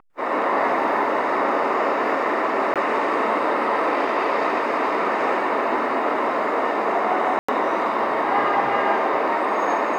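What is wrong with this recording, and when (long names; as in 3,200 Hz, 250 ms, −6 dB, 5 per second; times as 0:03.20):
0:02.74–0:02.76: drop-out 17 ms
0:07.39–0:07.49: drop-out 95 ms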